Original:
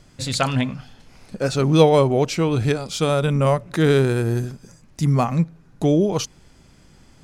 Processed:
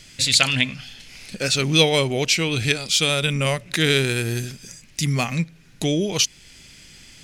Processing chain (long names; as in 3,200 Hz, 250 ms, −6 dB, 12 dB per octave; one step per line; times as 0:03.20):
high shelf with overshoot 1,600 Hz +13 dB, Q 1.5
in parallel at −3 dB: downward compressor, threshold −28 dBFS, peak gain reduction 20 dB
on the sum: level −5.5 dB